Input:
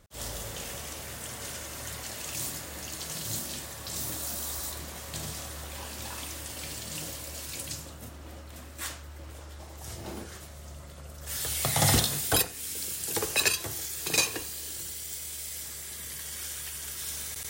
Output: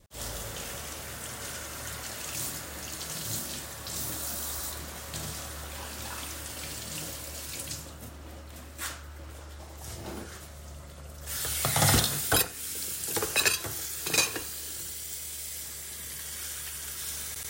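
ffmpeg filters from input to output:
-af "adynamicequalizer=threshold=0.002:dfrequency=1400:dqfactor=3.5:tfrequency=1400:tqfactor=3.5:attack=5:release=100:ratio=0.375:range=3:mode=boostabove:tftype=bell"

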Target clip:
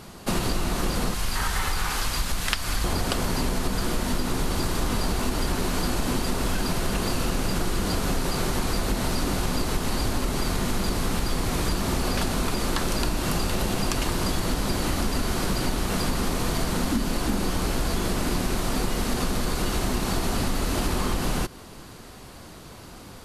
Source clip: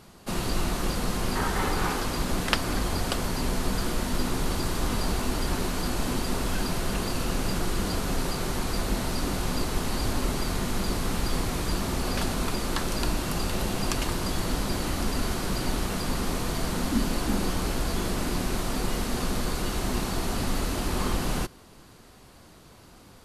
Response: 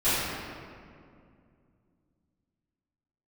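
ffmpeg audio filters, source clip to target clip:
-filter_complex "[0:a]asettb=1/sr,asplit=3[a][b][c];[a]atrim=end=1.144[d];[b]atrim=start=1.14:end=2.84,asetpts=PTS-STARTPTS,afade=t=in:d=0.004:c=qsin,afade=t=out:st=1.696:d=0.004:c=qsin,equalizer=f=320:t=o:w=2.8:g=-14[e];[c]atrim=start=2.836[f];[d][e]acrossfade=d=0.004:c1=hsin:c2=qsin[g];[g][f]acrossfade=d=0.004:c1=qsin:c2=hsin,acompressor=threshold=-29dB:ratio=6,volume=8dB"

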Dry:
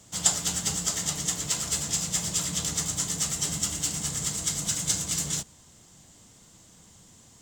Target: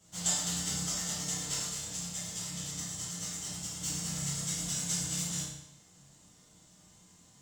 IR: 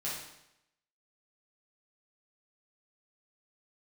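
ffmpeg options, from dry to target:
-filter_complex "[0:a]asettb=1/sr,asplit=3[a][b][c];[a]atrim=end=1.674[d];[b]atrim=start=1.67:end=3.8,asetpts=PTS-STARTPTS,afade=t=in:d=0.004:c=qsin,afade=t=out:st=2.126:d=0.004:c=qsin,flanger=delay=8.9:depth=2.1:regen=68:speed=1.5:shape=sinusoidal[e];[c]atrim=start=3.796[f];[d][e]acrossfade=d=0.004:c1=hsin:c2=qsin[g];[g][f]acrossfade=d=0.004:c1=qsin:c2=hsin[h];[1:a]atrim=start_sample=2205[i];[h][i]afir=irnorm=-1:irlink=0,volume=-8.5dB"

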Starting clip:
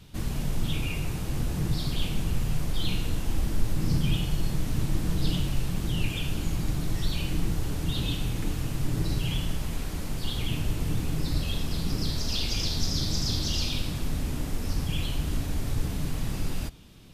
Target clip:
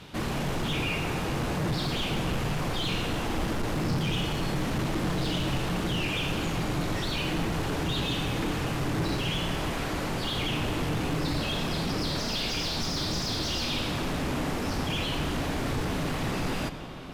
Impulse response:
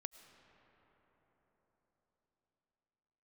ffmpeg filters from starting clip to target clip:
-filter_complex "[0:a]asplit=2[a][b];[b]highpass=f=720:p=1,volume=26dB,asoftclip=type=tanh:threshold=-11dB[c];[a][c]amix=inputs=2:normalize=0,lowpass=f=1.4k:p=1,volume=-6dB,asoftclip=type=hard:threshold=-21dB[d];[1:a]atrim=start_sample=2205,asetrate=37926,aresample=44100[e];[d][e]afir=irnorm=-1:irlink=0"

